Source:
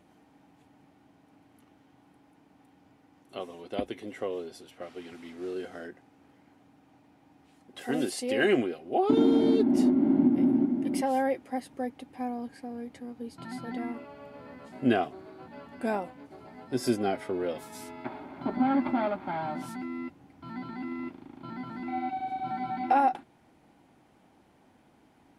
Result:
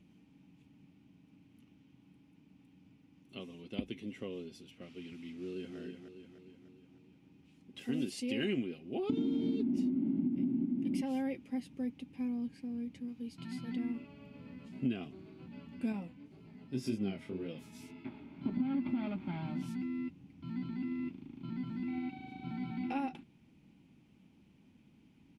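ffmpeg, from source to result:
-filter_complex "[0:a]asplit=2[a][b];[b]afade=t=in:st=5.33:d=0.01,afade=t=out:st=5.78:d=0.01,aecho=0:1:300|600|900|1200|1500|1800|2100:0.473151|0.260233|0.143128|0.0787205|0.0432963|0.023813|0.0130971[c];[a][c]amix=inputs=2:normalize=0,asettb=1/sr,asplit=3[d][e][f];[d]atrim=end=13.084[g];[e]atrim=start=13.08:end=13.76,asetpts=PTS-STARTPTS,afade=t=in:d=0.004:c=qsin,afade=t=out:st=0.676:d=0.004:c=qsin,tiltshelf=f=660:g=-3.5[h];[f]atrim=start=13.756[i];[g][h]acrossfade=d=0.004:c1=hsin:c2=qsin[j];[j][i]acrossfade=d=0.004:c1=qsin:c2=hsin,asettb=1/sr,asplit=3[k][l][m];[k]atrim=end=15.924[n];[l]atrim=start=15.92:end=18.45,asetpts=PTS-STARTPTS,afade=t=in:d=0.004:c=qsin,afade=t=out:st=2.526:d=0.004:c=qsin,flanger=delay=18:depth=7.1:speed=1.9[o];[m]atrim=start=18.446[p];[n][o]acrossfade=d=0.004:c1=hsin:c2=qsin[q];[q][p]acrossfade=d=0.004:c1=qsin:c2=hsin,firequalizer=gain_entry='entry(110,0);entry(180,5);entry(330,-6);entry(620,-16);entry(1100,-14);entry(1700,-14);entry(2500,0);entry(4000,-7);entry(5800,-6);entry(8500,-11)':delay=0.05:min_phase=1,acompressor=threshold=-30dB:ratio=6,bandreject=f=740:w=14"

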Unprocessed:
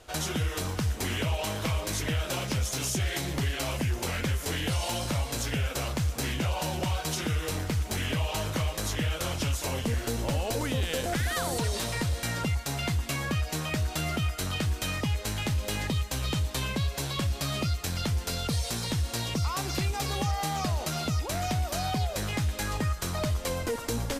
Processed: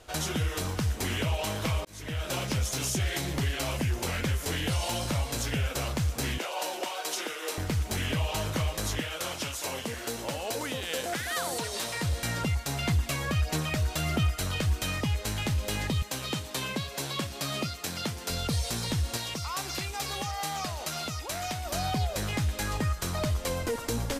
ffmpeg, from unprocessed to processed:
-filter_complex "[0:a]asettb=1/sr,asplit=3[a][b][c];[a]atrim=end=6.384[d];[b]atrim=start=6.38:end=7.58,asetpts=PTS-STARTPTS,afade=t=in:d=0.004:c=qsin,afade=t=out:st=1.196:d=0.004:c=qsin,highpass=f=350:w=0.5412,highpass=f=350:w=1.3066[e];[c]atrim=start=7.576[f];[d][e]acrossfade=d=0.004:c1=hsin:c2=qsin[g];[g][f]acrossfade=d=0.004:c1=qsin:c2=hsin,asettb=1/sr,asplit=3[h][i][j];[h]atrim=end=9.004[k];[i]atrim=start=9:end=12.03,asetpts=PTS-STARTPTS,afade=t=in:d=0.004:c=qsin,afade=t=out:st=3.026:d=0.004:c=qsin,highpass=f=420:p=1[l];[j]atrim=start=12.026[m];[k][l]acrossfade=d=0.004:c1=hsin:c2=qsin[n];[n][m]acrossfade=d=0.004:c1=qsin:c2=hsin,asettb=1/sr,asplit=3[o][p][q];[o]atrim=end=12.884[r];[p]atrim=start=12.88:end=14.76,asetpts=PTS-STARTPTS,afade=t=in:d=0.004:c=qsin,afade=t=out:st=1.876:d=0.004:c=qsin,aphaser=in_gain=1:out_gain=1:delay=2.1:decay=0.3:speed=1.5:type=sinusoidal[s];[q]atrim=start=14.756[t];[r][s]acrossfade=d=0.004:c1=hsin:c2=qsin[u];[u][t]acrossfade=d=0.004:c1=qsin:c2=hsin,asettb=1/sr,asplit=3[v][w][x];[v]atrim=end=16.024[y];[w]atrim=start=16.02:end=18.3,asetpts=PTS-STARTPTS,afade=t=in:d=0.004:c=qsin,afade=t=out:st=2.276:d=0.004:c=qsin,highpass=170[z];[x]atrim=start=18.296[aa];[y][z]acrossfade=d=0.004:c1=hsin:c2=qsin[ab];[ab][aa]acrossfade=d=0.004:c1=qsin:c2=hsin,asettb=1/sr,asplit=3[ac][ad][ae];[ac]atrim=end=19.174[af];[ad]atrim=start=19.17:end=21.66,asetpts=PTS-STARTPTS,afade=t=in:d=0.004:c=qsin,afade=t=out:st=2.486:d=0.004:c=qsin,lowshelf=f=440:g=-10[ag];[ae]atrim=start=21.656[ah];[af][ag]acrossfade=d=0.004:c1=hsin:c2=qsin[ai];[ai][ah]acrossfade=d=0.004:c1=qsin:c2=hsin,asplit=2[aj][ak];[aj]atrim=end=1.85,asetpts=PTS-STARTPTS,afade=t=out:st=1.846:d=0.004:c=hsin[al];[ak]atrim=start=1.85,asetpts=PTS-STARTPTS,afade=t=in:d=0.5[am];[al][am]concat=n=2:v=0:a=1"

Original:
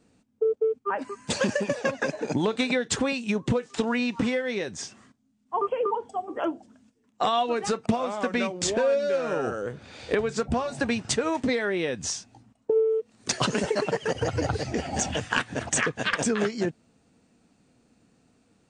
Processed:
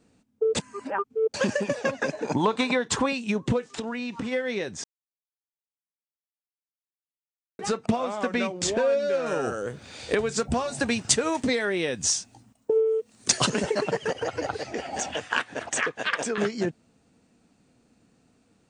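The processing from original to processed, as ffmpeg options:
-filter_complex "[0:a]asettb=1/sr,asplit=3[a][b][c];[a]atrim=end=2.254[d];[b]atrim=start=2.25:end=3.06,asetpts=PTS-STARTPTS,afade=t=in:d=0.004:c=qsin,afade=t=out:st=0.806:d=0.004:c=qsin,equalizer=f=1k:w=2.7:g=11[e];[c]atrim=start=3.056[f];[d][e]acrossfade=d=0.004:c1=hsin:c2=qsin[g];[g][f]acrossfade=d=0.004:c1=qsin:c2=hsin,asplit=3[h][i][j];[h]afade=t=out:st=3.74:d=0.02[k];[i]acompressor=threshold=-28dB:ratio=5:attack=3.2:release=140:knee=1:detection=peak,afade=t=in:st=3.74:d=0.02,afade=t=out:st=4.31:d=0.02[l];[j]afade=t=in:st=4.31:d=0.02[m];[k][l][m]amix=inputs=3:normalize=0,asettb=1/sr,asplit=3[n][o][p];[n]atrim=end=9.264[q];[o]atrim=start=9.26:end=13.5,asetpts=PTS-STARTPTS,afade=t=in:d=0.004:c=qsin,afade=t=out:st=4.236:d=0.004:c=qsin,aemphasis=mode=production:type=50kf[r];[p]atrim=start=13.496[s];[q][r]acrossfade=d=0.004:c1=hsin:c2=qsin[t];[t][s]acrossfade=d=0.004:c1=qsin:c2=hsin,asettb=1/sr,asplit=3[u][v][w];[u]atrim=end=14.104[x];[v]atrim=start=14.1:end=16.38,asetpts=PTS-STARTPTS,afade=t=in:d=0.004:c=qsin,afade=t=out:st=2.276:d=0.004:c=qsin,bass=f=250:g=-15,treble=f=4k:g=-4[y];[w]atrim=start=16.376[z];[x][y]acrossfade=d=0.004:c1=hsin:c2=qsin[aa];[aa][z]acrossfade=d=0.004:c1=qsin:c2=hsin,asplit=5[ab][ac][ad][ae][af];[ab]atrim=end=0.552[ag];[ac]atrim=start=0.548:end=1.342,asetpts=PTS-STARTPTS,areverse[ah];[ad]atrim=start=1.338:end=4.84,asetpts=PTS-STARTPTS,afade=t=out:st=3.498:d=0.004:c=hsin[ai];[ae]atrim=start=4.84:end=7.59,asetpts=PTS-STARTPTS,volume=0[aj];[af]atrim=start=7.59,asetpts=PTS-STARTPTS,afade=t=in:d=0.004:c=hsin[ak];[ag][ah]acrossfade=d=0.004:c1=hsin:c2=hsin[al];[ai][aj][ak]concat=n=3:v=0:a=1[am];[al][am]acrossfade=d=0.004:c1=hsin:c2=hsin"

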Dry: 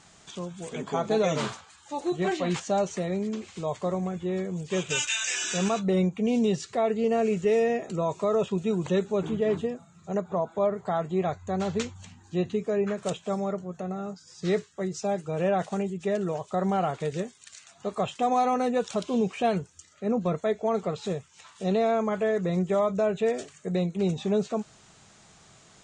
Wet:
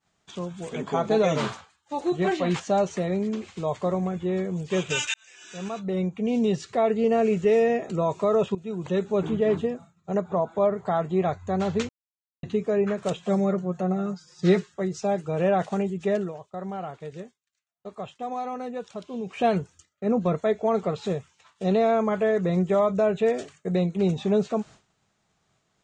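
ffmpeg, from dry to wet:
-filter_complex "[0:a]asettb=1/sr,asplit=3[a][b][c];[a]atrim=end=13.174[d];[b]atrim=start=13.17:end=14.74,asetpts=PTS-STARTPTS,afade=t=in:d=0.004:c=qsin,afade=t=out:st=1.566:d=0.004:c=qsin,aecho=1:1:5.6:0.85,atrim=end_sample=69237[e];[c]atrim=start=14.736[f];[d][e]acrossfade=d=0.004:c1=hsin:c2=qsin[g];[g][f]acrossfade=d=0.004:c1=qsin:c2=hsin,asplit=7[h][i][j][k][l][m][n];[h]atrim=end=5.14,asetpts=PTS-STARTPTS,afade=t=out:st=5.136:d=0.004:c=hsin[o];[i]atrim=start=5.14:end=8.55,asetpts=PTS-STARTPTS,afade=t=in:d=1.64,afade=t=out:st=3.406:d=0.004:c=hsin:silence=0.158489[p];[j]atrim=start=8.55:end=11.89,asetpts=PTS-STARTPTS,afade=t=in:d=0.64:silence=0.158489,afade=t=out:st=3.336:d=0.004:c=hsin[q];[k]atrim=start=11.89:end=12.43,asetpts=PTS-STARTPTS,volume=0[r];[l]atrim=start=12.43:end=16.32,asetpts=PTS-STARTPTS,afade=t=in:d=0.004:c=hsin,afade=t=out:st=3.74:d=0.15:silence=0.298538[s];[m]atrim=start=16.32:end=19.26,asetpts=PTS-STARTPTS,volume=-10.5dB[t];[n]atrim=start=19.26,asetpts=PTS-STARTPTS,afade=t=in:d=0.15:silence=0.298538[u];[o][p][q][r][s][t][u]concat=n=7:v=0:a=1,agate=range=-33dB:threshold=-43dB:ratio=3:detection=peak,highshelf=f=6.5k:g=-10.5,volume=3dB"

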